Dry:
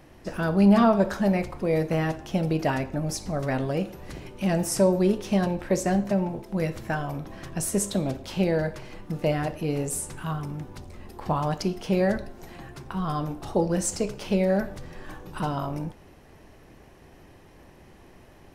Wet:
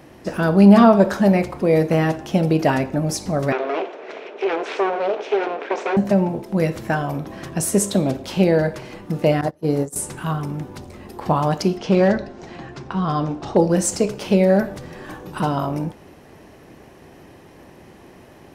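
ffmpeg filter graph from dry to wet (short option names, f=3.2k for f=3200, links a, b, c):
-filter_complex "[0:a]asettb=1/sr,asplit=3[a][b][c];[a]atrim=end=3.524[d];[b]atrim=start=3.52:end=5.97,asetpts=PTS-STARTPTS,afade=t=in:d=0.004:c=qsin,afade=t=out:st=2.446:d=0.004:c=qsin,acompressor=threshold=-26dB:ratio=2:attack=3.2:release=140:knee=1:detection=peak,aeval=exprs='abs(val(0))':c=same,highpass=f=310:w=0.5412,highpass=f=310:w=1.3066,equalizer=f=430:t=q:w=4:g=9,equalizer=f=650:t=q:w=4:g=6,equalizer=f=1.5k:t=q:w=4:g=4,equalizer=f=2.4k:t=q:w=4:g=6,equalizer=f=4.7k:t=q:w=4:g=-6,lowpass=f=5k:w=0.5412,lowpass=f=5k:w=1.3066[e];[c]atrim=start=5.966[f];[d][e]acrossfade=d=0.004:c1=hsin:c2=qsin[g];[g][f]acrossfade=d=0.004:c1=qsin:c2=hsin,asettb=1/sr,asplit=3[h][i][j];[h]atrim=end=9.414[k];[i]atrim=start=9.41:end=9.96,asetpts=PTS-STARTPTS,afade=t=in:d=0.004:c=qsin,afade=t=out:st=0.546:d=0.004:c=qsin,agate=range=-23dB:threshold=-29dB:ratio=16:release=100:detection=peak,equalizer=f=2.6k:t=o:w=0.41:g=-14[l];[j]atrim=start=9.956[m];[k][l]acrossfade=d=0.004:c1=hsin:c2=qsin[n];[n][m]acrossfade=d=0.004:c1=qsin:c2=hsin,asettb=1/sr,asplit=3[o][p][q];[o]atrim=end=11.774[r];[p]atrim=start=11.77:end=13.57,asetpts=PTS-STARTPTS,afade=t=in:d=0.004:c=qsin,afade=t=out:st=1.796:d=0.004:c=qsin,lowpass=f=6.6k:w=0.5412,lowpass=f=6.6k:w=1.3066,asoftclip=type=hard:threshold=-17dB[s];[q]atrim=start=13.566[t];[r][s]acrossfade=d=0.004:c1=hsin:c2=qsin[u];[u][t]acrossfade=d=0.004:c1=qsin:c2=hsin,highpass=f=260:p=1,lowshelf=f=440:g=7,volume=6dB"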